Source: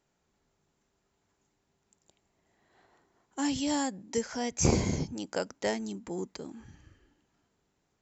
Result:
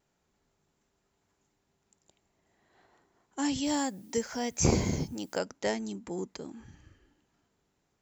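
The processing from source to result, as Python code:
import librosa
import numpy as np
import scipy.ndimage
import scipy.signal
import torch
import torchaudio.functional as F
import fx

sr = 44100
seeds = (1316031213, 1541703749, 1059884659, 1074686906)

y = fx.vibrato(x, sr, rate_hz=0.35, depth_cents=6.8)
y = fx.dmg_noise_colour(y, sr, seeds[0], colour='blue', level_db=-65.0, at=(3.63, 5.38), fade=0.02)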